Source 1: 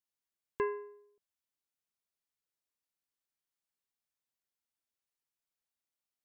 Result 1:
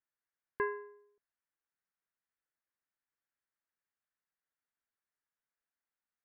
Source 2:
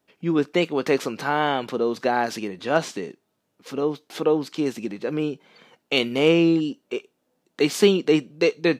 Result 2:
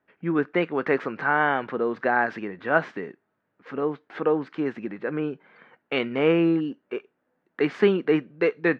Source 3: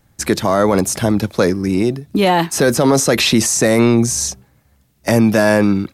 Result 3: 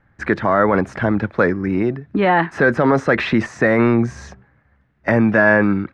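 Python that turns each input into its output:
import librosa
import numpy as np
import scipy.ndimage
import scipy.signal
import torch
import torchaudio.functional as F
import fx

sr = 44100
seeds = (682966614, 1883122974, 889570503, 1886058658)

y = fx.lowpass_res(x, sr, hz=1700.0, q=2.7)
y = y * librosa.db_to_amplitude(-3.0)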